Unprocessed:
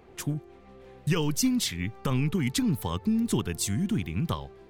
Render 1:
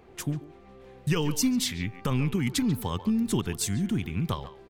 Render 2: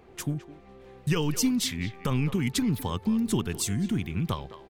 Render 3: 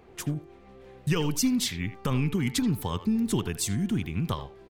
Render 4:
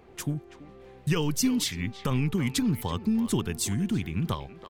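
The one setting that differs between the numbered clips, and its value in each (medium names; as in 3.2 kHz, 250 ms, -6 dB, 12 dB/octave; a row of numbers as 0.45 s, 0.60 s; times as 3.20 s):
speakerphone echo, time: 140 ms, 210 ms, 80 ms, 330 ms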